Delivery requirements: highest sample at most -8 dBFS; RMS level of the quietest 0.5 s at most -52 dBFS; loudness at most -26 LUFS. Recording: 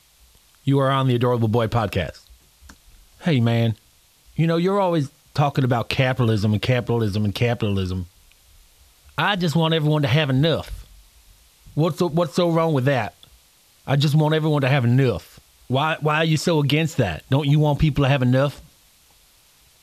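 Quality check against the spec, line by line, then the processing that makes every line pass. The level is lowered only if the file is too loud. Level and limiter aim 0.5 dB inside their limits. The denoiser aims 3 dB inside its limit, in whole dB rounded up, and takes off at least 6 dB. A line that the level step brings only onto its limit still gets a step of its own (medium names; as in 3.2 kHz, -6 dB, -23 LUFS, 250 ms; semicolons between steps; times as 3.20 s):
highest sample -4.0 dBFS: fail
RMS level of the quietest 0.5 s -56 dBFS: pass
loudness -20.5 LUFS: fail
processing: trim -6 dB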